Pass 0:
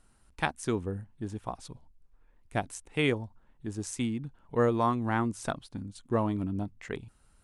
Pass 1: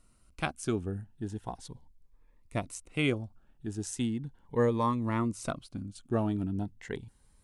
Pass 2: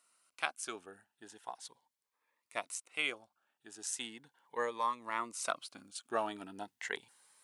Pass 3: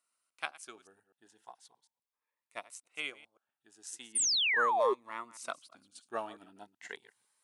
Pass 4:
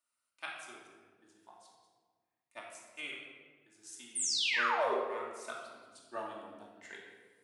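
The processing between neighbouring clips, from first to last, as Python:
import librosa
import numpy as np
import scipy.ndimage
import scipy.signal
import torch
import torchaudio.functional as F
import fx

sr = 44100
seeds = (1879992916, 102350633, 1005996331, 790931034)

y1 = fx.notch_cascade(x, sr, direction='rising', hz=0.38)
y2 = scipy.signal.sosfilt(scipy.signal.butter(2, 880.0, 'highpass', fs=sr, output='sos'), y1)
y2 = fx.rider(y2, sr, range_db=4, speed_s=0.5)
y2 = y2 * librosa.db_to_amplitude(2.5)
y3 = fx.reverse_delay(y2, sr, ms=125, wet_db=-12.5)
y3 = fx.spec_paint(y3, sr, seeds[0], shape='fall', start_s=4.15, length_s=0.79, low_hz=360.0, high_hz=9800.0, level_db=-28.0)
y3 = fx.upward_expand(y3, sr, threshold_db=-46.0, expansion=1.5)
y4 = fx.room_shoebox(y3, sr, seeds[1], volume_m3=1200.0, walls='mixed', distance_m=2.6)
y4 = y4 * librosa.db_to_amplitude(-7.0)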